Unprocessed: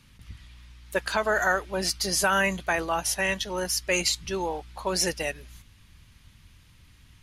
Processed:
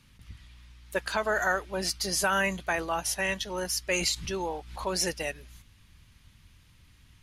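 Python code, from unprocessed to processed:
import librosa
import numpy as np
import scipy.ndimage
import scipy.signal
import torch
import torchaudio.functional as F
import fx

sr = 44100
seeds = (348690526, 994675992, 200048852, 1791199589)

y = fx.pre_swell(x, sr, db_per_s=73.0, at=(3.98, 4.87))
y = y * librosa.db_to_amplitude(-3.0)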